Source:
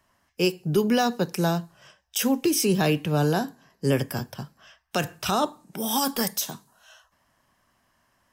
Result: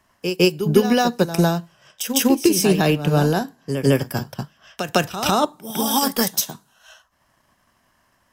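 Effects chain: reverse echo 0.154 s -8.5 dB; transient shaper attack +5 dB, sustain -5 dB; gain +4 dB

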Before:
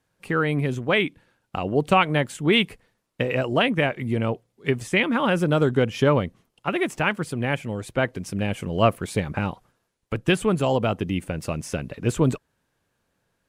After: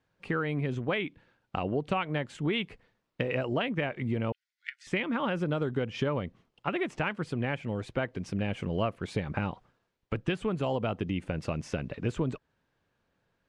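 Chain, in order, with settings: LPF 4400 Hz 12 dB/oct; compressor 5:1, threshold -24 dBFS, peak gain reduction 11 dB; 4.32–4.87 rippled Chebyshev high-pass 1400 Hz, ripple 6 dB; gain -2.5 dB

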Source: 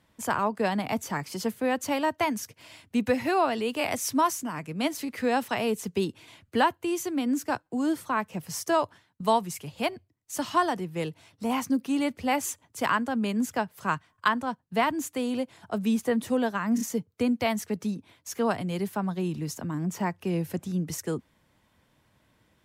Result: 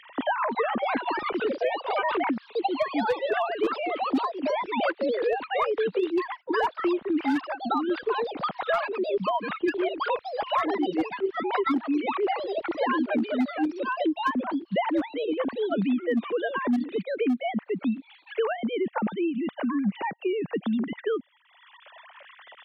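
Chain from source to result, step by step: sine-wave speech; tremolo 9.6 Hz, depth 29%; echoes that change speed 0.35 s, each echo +4 st, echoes 2; hard clip -16.5 dBFS, distortion -20 dB; three-band squash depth 100%

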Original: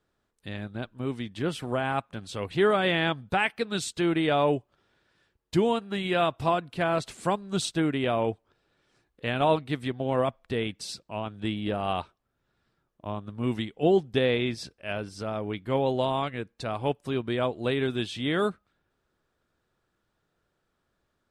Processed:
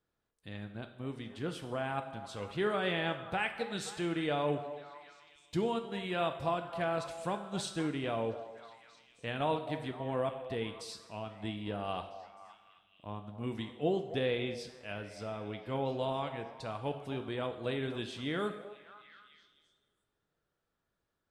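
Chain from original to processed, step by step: delay with a stepping band-pass 0.26 s, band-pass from 660 Hz, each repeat 0.7 oct, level -10 dB; two-slope reverb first 0.82 s, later 3.1 s, from -24 dB, DRR 7 dB; gain -9 dB

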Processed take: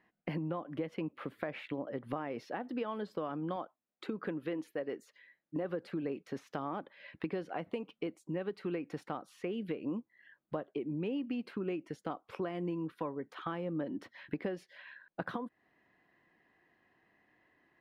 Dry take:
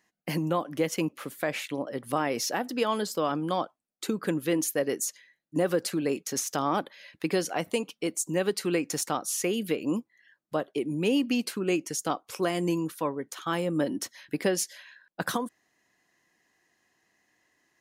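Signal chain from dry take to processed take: 3.56–5.65 low shelf 160 Hz -10.5 dB; compressor 4:1, threshold -39 dBFS, peak gain reduction 15 dB; air absorption 450 m; gain +4 dB

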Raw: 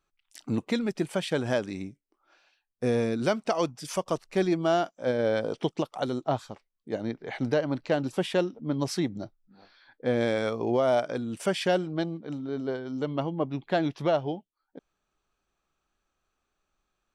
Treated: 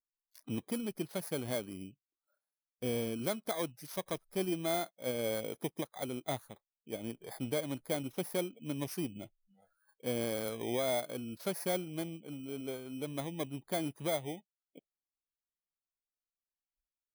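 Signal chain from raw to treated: FFT order left unsorted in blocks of 16 samples; vibrato 0.48 Hz 7.6 cents; spectral noise reduction 20 dB; gain -9 dB

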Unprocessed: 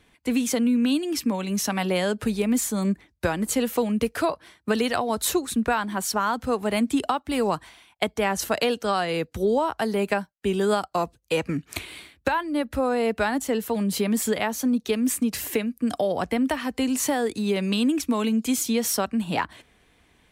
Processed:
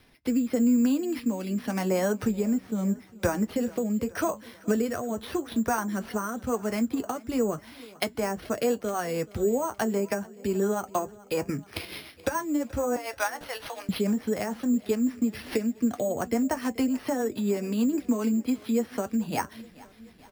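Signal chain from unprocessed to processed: 12.96–13.89 HPF 690 Hz 24 dB/oct; treble ducked by the level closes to 1700 Hz, closed at -20.5 dBFS; in parallel at +2 dB: compressor, threshold -35 dBFS, peak gain reduction 16 dB; on the sum: rotary speaker horn 0.85 Hz, later 7 Hz, at 8.43; flange 0.11 Hz, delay 7.8 ms, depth 2.1 ms, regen -55%; sample-and-hold 6×; on a send: feedback echo 0.43 s, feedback 59%, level -22 dB; on the sum: gain +1 dB

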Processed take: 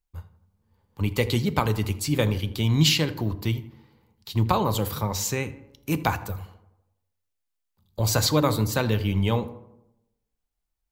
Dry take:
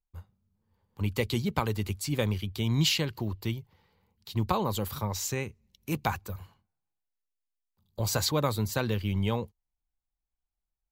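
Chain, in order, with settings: tape echo 82 ms, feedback 60%, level -15.5 dB, low-pass 1900 Hz; FDN reverb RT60 0.64 s, low-frequency decay 1.5×, high-frequency decay 0.6×, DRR 12.5 dB; gain +5 dB

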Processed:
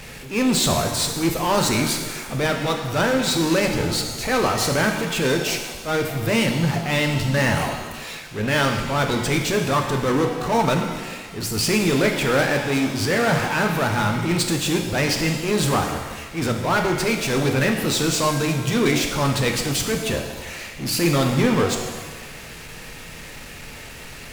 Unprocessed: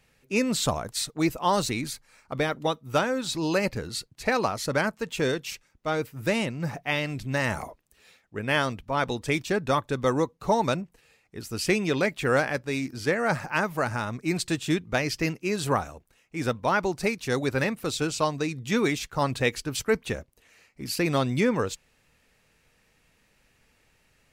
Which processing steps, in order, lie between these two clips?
power-law curve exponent 0.5; transient shaper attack -8 dB, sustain -4 dB; shimmer reverb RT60 1.3 s, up +7 st, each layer -8 dB, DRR 3.5 dB

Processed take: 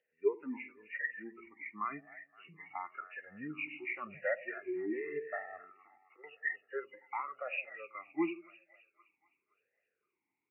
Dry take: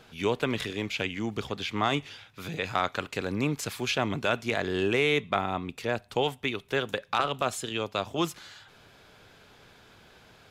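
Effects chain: nonlinear frequency compression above 1700 Hz 4:1; spectral noise reduction 24 dB; 5.62–6.24 auto swell 0.552 s; split-band echo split 700 Hz, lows 81 ms, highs 0.259 s, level -15.5 dB; vowel sweep e-u 0.92 Hz; gain +3.5 dB

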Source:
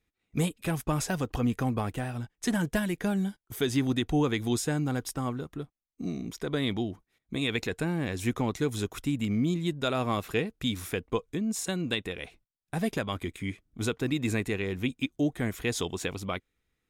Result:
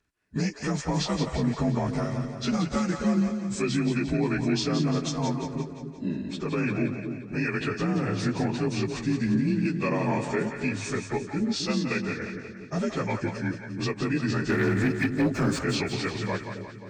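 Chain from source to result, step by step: inharmonic rescaling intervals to 86%; 14.49–15.59 sample leveller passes 2; limiter -23 dBFS, peak gain reduction 6.5 dB; on a send: split-band echo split 520 Hz, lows 0.266 s, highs 0.175 s, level -7 dB; on the sum: gain +5 dB

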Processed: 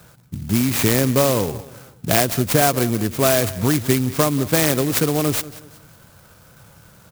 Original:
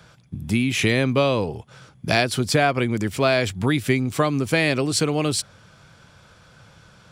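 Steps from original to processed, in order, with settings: on a send: feedback echo 0.186 s, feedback 37%, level -17.5 dB; on the sum: clock jitter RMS 0.1 ms; gain +2.5 dB

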